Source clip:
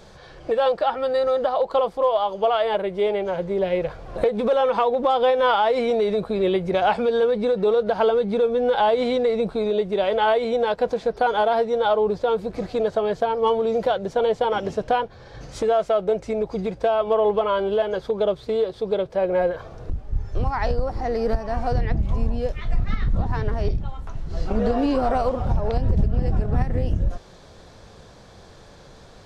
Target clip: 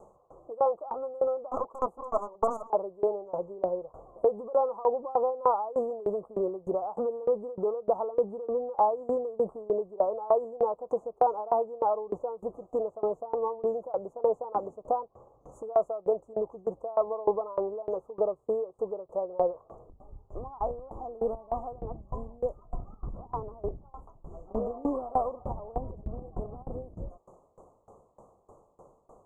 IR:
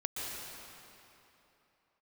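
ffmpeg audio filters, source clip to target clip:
-filter_complex "[0:a]asettb=1/sr,asplit=3[link_01][link_02][link_03];[link_01]atrim=end=1.514[link_04];[link_02]atrim=start=1.51:end=2.7,asetpts=PTS-STARTPTS,afade=type=in:duration=0.004:curve=qsin,afade=type=out:start_time=1.186:duration=0.004:curve=qsin,aeval=exprs='0.335*(cos(1*acos(clip(val(0)/0.335,-1,1)))-cos(1*PI/2))+0.075*(cos(3*acos(clip(val(0)/0.335,-1,1)))-cos(3*PI/2))+0.119*(cos(6*acos(clip(val(0)/0.335,-1,1)))-cos(6*PI/2))+0.0668*(cos(7*acos(clip(val(0)/0.335,-1,1)))-cos(7*PI/2))+0.0531*(cos(8*acos(clip(val(0)/0.335,-1,1)))-cos(8*PI/2))':channel_layout=same[link_05];[link_03]atrim=start=2.696[link_06];[link_04][link_05]acrossfade=duration=0.004:curve1=hsin:curve2=qsin[link_07];[link_07][link_06]acrossfade=duration=0.004:curve1=qsin:curve2=hsin,asuperstop=centerf=2900:order=20:qfactor=0.53,bass=frequency=250:gain=-12,treble=frequency=4000:gain=-10,aeval=exprs='val(0)*pow(10,-23*if(lt(mod(3.3*n/s,1),2*abs(3.3)/1000),1-mod(3.3*n/s,1)/(2*abs(3.3)/1000),(mod(3.3*n/s,1)-2*abs(3.3)/1000)/(1-2*abs(3.3)/1000))/20)':channel_layout=same"

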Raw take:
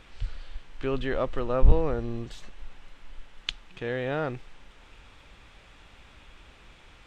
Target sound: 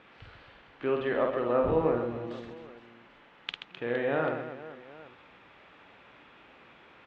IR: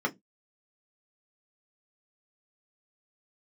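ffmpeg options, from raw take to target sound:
-af "highpass=200,lowpass=2400,aecho=1:1:50|130|258|462.8|790.5:0.631|0.398|0.251|0.158|0.1"

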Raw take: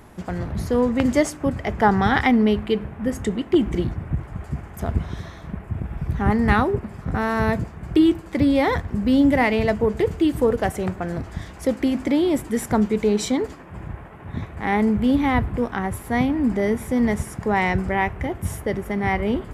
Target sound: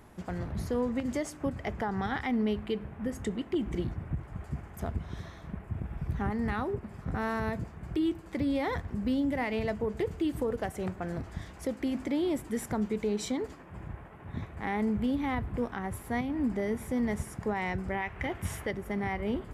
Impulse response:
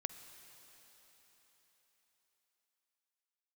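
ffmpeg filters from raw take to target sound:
-filter_complex "[0:a]asettb=1/sr,asplit=3[link_01][link_02][link_03];[link_01]atrim=end=18.024[link_04];[link_02]atrim=start=18.02:end=18.71,asetpts=PTS-STARTPTS,afade=type=in:duration=0.004:curve=qsin,afade=type=out:start_time=0.686:duration=0.004:curve=qsin,equalizer=frequency=2500:width_type=o:width=2.7:gain=9.5[link_05];[link_03]atrim=start=18.706[link_06];[link_04][link_05]acrossfade=duration=0.004:curve1=hsin:curve2=qsin[link_07];[link_07][link_06]acrossfade=duration=0.004:curve1=qsin:curve2=hsin,alimiter=limit=-14dB:level=0:latency=1:release=203,volume=-8dB"

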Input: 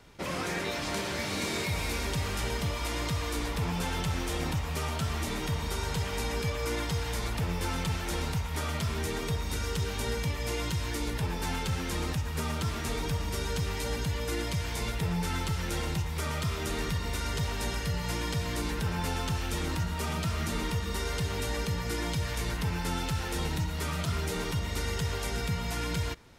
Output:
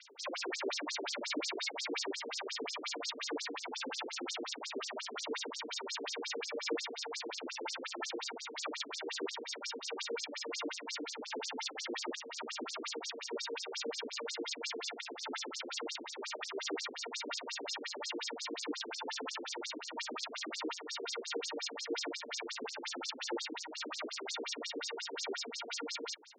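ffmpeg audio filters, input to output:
ffmpeg -i in.wav -filter_complex "[0:a]acrossover=split=4500[link_01][link_02];[link_02]acompressor=threshold=-46dB:ratio=4:attack=1:release=60[link_03];[link_01][link_03]amix=inputs=2:normalize=0,highshelf=frequency=3600:gain=10.5,bandreject=frequency=7800:width=5.7,asoftclip=type=tanh:threshold=-30.5dB,aphaser=in_gain=1:out_gain=1:delay=1.4:decay=0.26:speed=1.5:type=sinusoidal,afftfilt=real='re*between(b*sr/1024,330*pow(6200/330,0.5+0.5*sin(2*PI*5.6*pts/sr))/1.41,330*pow(6200/330,0.5+0.5*sin(2*PI*5.6*pts/sr))*1.41)':imag='im*between(b*sr/1024,330*pow(6200/330,0.5+0.5*sin(2*PI*5.6*pts/sr))/1.41,330*pow(6200/330,0.5+0.5*sin(2*PI*5.6*pts/sr))*1.41)':win_size=1024:overlap=0.75,volume=4.5dB" out.wav

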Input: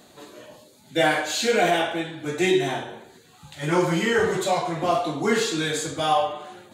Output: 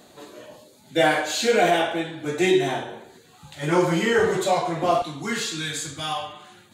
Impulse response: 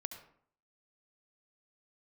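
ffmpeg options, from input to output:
-af "asetnsamples=nb_out_samples=441:pad=0,asendcmd='5.02 equalizer g -13',equalizer=frequency=530:width=0.78:gain=2"

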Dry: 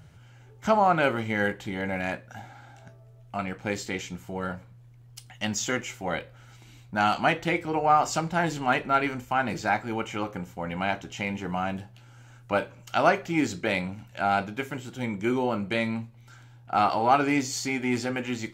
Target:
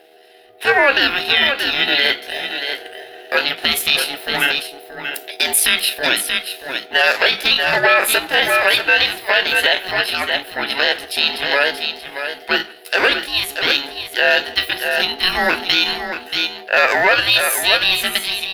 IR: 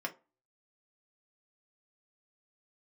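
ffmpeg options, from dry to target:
-filter_complex "[0:a]asplit=2[link_01][link_02];[link_02]adelay=160,highpass=300,lowpass=3400,asoftclip=type=hard:threshold=-16dB,volume=-26dB[link_03];[link_01][link_03]amix=inputs=2:normalize=0,aeval=exprs='val(0)+0.00447*(sin(2*PI*50*n/s)+sin(2*PI*2*50*n/s)/2+sin(2*PI*3*50*n/s)/3+sin(2*PI*4*50*n/s)/4+sin(2*PI*5*50*n/s)/5)':channel_layout=same,asetrate=68011,aresample=44100,atempo=0.64842,firequalizer=gain_entry='entry(150,0);entry(400,-24);entry(1000,1);entry(1600,1);entry(3000,9);entry(6500,-9);entry(11000,5)':delay=0.05:min_phase=1,dynaudnorm=framelen=150:gausssize=11:maxgain=11.5dB,lowshelf=frequency=150:gain=-10.5,aeval=exprs='val(0)*sin(2*PI*560*n/s)':channel_layout=same,asplit=2[link_04][link_05];[link_05]aecho=0:1:631:0.355[link_06];[link_04][link_06]amix=inputs=2:normalize=0,alimiter=level_in=9dB:limit=-1dB:release=50:level=0:latency=1,volume=-1dB"

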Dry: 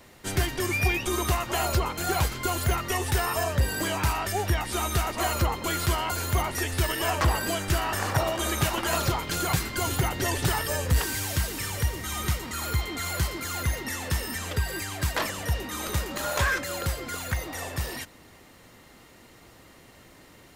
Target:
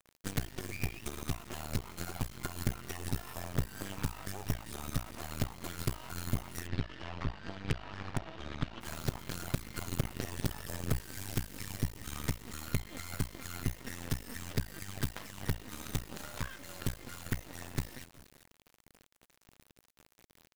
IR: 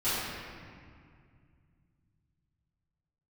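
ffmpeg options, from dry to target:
-filter_complex "[0:a]acompressor=threshold=-30dB:ratio=8,lowshelf=frequency=300:width_type=q:width=1.5:gain=7,aecho=1:1:392:0.188,acrusher=bits=4:dc=4:mix=0:aa=0.000001,asplit=3[link_01][link_02][link_03];[link_01]afade=type=out:start_time=6.66:duration=0.02[link_04];[link_02]lowpass=frequency=4300:width=0.5412,lowpass=frequency=4300:width=1.3066,afade=type=in:start_time=6.66:duration=0.02,afade=type=out:start_time=8.8:duration=0.02[link_05];[link_03]afade=type=in:start_time=8.8:duration=0.02[link_06];[link_04][link_05][link_06]amix=inputs=3:normalize=0,aeval=exprs='0.282*(cos(1*acos(clip(val(0)/0.282,-1,1)))-cos(1*PI/2))+0.112*(cos(5*acos(clip(val(0)/0.282,-1,1)))-cos(5*PI/2))+0.1*(cos(7*acos(clip(val(0)/0.282,-1,1)))-cos(7*PI/2))':channel_layout=same,volume=-6.5dB"

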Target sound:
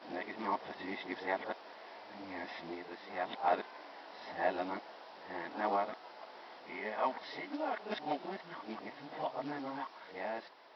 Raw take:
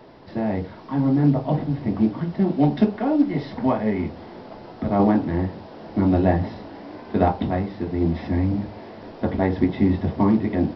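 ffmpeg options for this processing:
ffmpeg -i in.wav -af "areverse,highpass=880,volume=-4.5dB" out.wav

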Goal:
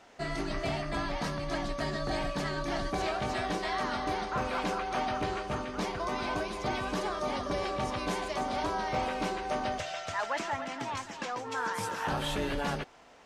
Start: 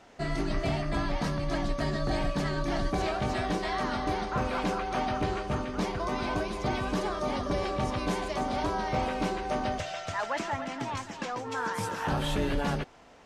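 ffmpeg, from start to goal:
ffmpeg -i in.wav -af "lowshelf=frequency=330:gain=-7" out.wav

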